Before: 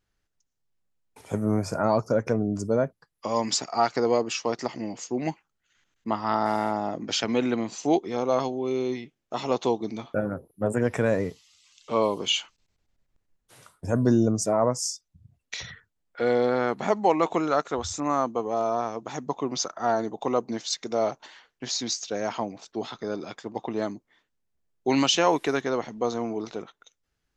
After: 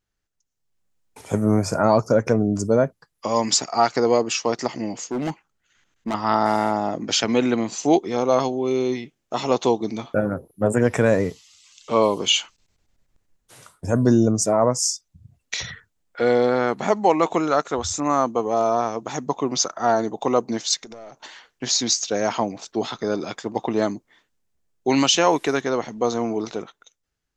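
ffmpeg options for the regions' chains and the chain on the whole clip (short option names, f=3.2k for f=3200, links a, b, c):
-filter_complex "[0:a]asettb=1/sr,asplit=3[a][b][c];[a]atrim=end=5.014[d];[b]atrim=start=5.01:end=6.14,asetpts=PTS-STARTPTS,afade=t=in:d=0.004:c=qsin,afade=t=out:st=1.126:d=0.004:c=qsin,highshelf=f=3.6k:g=-5,volume=27dB,asoftclip=hard,volume=-27dB[e];[c]atrim=start=6.136[f];[d][e]acrossfade=d=0.004:c1=hsin:c2=qsin[g];[g][f]acrossfade=d=0.004:c1=qsin:c2=hsin,asettb=1/sr,asplit=3[h][i][j];[h]atrim=end=20.804[k];[i]atrim=start=20.8:end=21.22,asetpts=PTS-STARTPTS,afade=t=in:d=0.004:c=qsin,afade=t=out:st=0.416:d=0.004:c=qsin,aeval=exprs='(tanh(10*val(0)+0.35)-tanh(0.35))/10':c=same,acompressor=threshold=-41dB:ratio=16:attack=3.2:release=140:knee=1:detection=peak[l];[j]atrim=start=21.216[m];[k][l]acrossfade=d=0.004:c1=hsin:c2=qsin[n];[n][m]acrossfade=d=0.004:c1=qsin:c2=hsin,equalizer=f=7k:t=o:w=0.77:g=3.5,dynaudnorm=f=110:g=13:m=11.5dB,volume=-3.5dB"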